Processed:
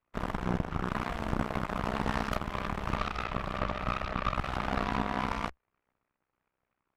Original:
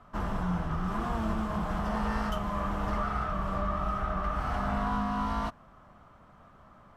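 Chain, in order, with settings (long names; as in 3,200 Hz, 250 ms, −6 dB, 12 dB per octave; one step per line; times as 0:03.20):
harmonic generator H 2 −8 dB, 3 −44 dB, 6 −20 dB, 7 −17 dB, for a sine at −19 dBFS
amplitude modulation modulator 63 Hz, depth 80%
level +1.5 dB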